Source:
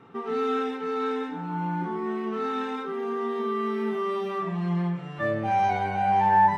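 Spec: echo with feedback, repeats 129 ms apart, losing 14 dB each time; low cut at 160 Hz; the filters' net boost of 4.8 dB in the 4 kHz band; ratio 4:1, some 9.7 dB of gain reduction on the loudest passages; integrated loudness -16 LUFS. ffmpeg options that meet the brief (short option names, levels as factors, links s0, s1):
-af "highpass=160,equalizer=f=4000:t=o:g=6,acompressor=threshold=0.0447:ratio=4,aecho=1:1:129|258:0.2|0.0399,volume=5.62"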